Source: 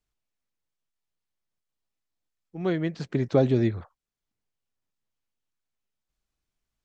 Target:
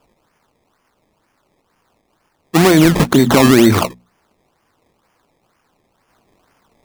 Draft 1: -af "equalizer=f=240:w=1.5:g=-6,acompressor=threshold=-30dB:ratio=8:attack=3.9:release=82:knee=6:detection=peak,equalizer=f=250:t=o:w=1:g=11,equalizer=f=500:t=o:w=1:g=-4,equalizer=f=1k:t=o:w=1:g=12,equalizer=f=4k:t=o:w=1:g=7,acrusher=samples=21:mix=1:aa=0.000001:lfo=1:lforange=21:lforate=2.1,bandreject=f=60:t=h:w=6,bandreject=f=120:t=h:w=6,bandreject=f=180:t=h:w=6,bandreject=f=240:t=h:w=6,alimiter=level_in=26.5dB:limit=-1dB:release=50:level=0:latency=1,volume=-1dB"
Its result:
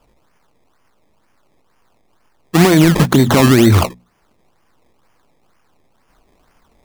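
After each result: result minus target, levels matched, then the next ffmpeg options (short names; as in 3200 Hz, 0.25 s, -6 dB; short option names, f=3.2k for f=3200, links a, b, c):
compressor: peak gain reduction +8 dB; 125 Hz band +4.0 dB
-af "equalizer=f=240:w=1.5:g=-6,acompressor=threshold=-21.5dB:ratio=8:attack=3.9:release=82:knee=6:detection=peak,equalizer=f=250:t=o:w=1:g=11,equalizer=f=500:t=o:w=1:g=-4,equalizer=f=1k:t=o:w=1:g=12,equalizer=f=4k:t=o:w=1:g=7,acrusher=samples=21:mix=1:aa=0.000001:lfo=1:lforange=21:lforate=2.1,bandreject=f=60:t=h:w=6,bandreject=f=120:t=h:w=6,bandreject=f=180:t=h:w=6,bandreject=f=240:t=h:w=6,alimiter=level_in=26.5dB:limit=-1dB:release=50:level=0:latency=1,volume=-1dB"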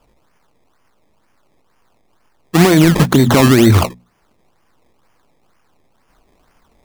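125 Hz band +4.0 dB
-af "highpass=170,equalizer=f=240:w=1.5:g=-6,acompressor=threshold=-21.5dB:ratio=8:attack=3.9:release=82:knee=6:detection=peak,equalizer=f=250:t=o:w=1:g=11,equalizer=f=500:t=o:w=1:g=-4,equalizer=f=1k:t=o:w=1:g=12,equalizer=f=4k:t=o:w=1:g=7,acrusher=samples=21:mix=1:aa=0.000001:lfo=1:lforange=21:lforate=2.1,bandreject=f=60:t=h:w=6,bandreject=f=120:t=h:w=6,bandreject=f=180:t=h:w=6,bandreject=f=240:t=h:w=6,alimiter=level_in=26.5dB:limit=-1dB:release=50:level=0:latency=1,volume=-1dB"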